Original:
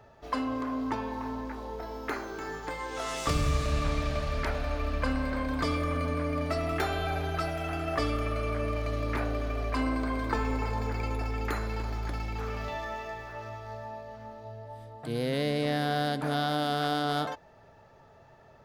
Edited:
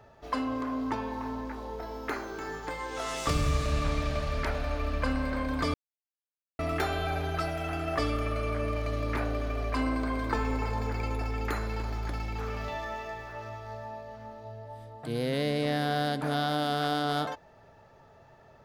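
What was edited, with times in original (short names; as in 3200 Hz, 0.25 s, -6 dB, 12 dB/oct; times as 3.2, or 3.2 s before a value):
5.74–6.59 mute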